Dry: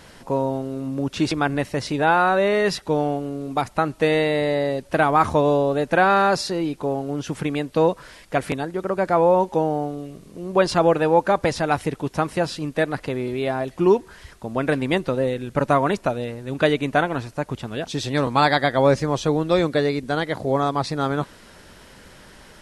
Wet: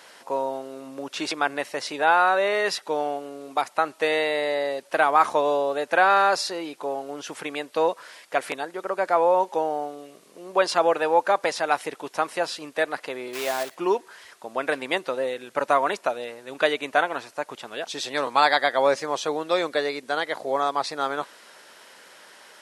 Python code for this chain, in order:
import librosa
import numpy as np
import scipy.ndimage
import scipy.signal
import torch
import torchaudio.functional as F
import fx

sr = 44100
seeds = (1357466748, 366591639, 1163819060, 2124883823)

y = fx.block_float(x, sr, bits=3, at=(13.33, 13.75))
y = scipy.signal.sosfilt(scipy.signal.butter(2, 550.0, 'highpass', fs=sr, output='sos'), y)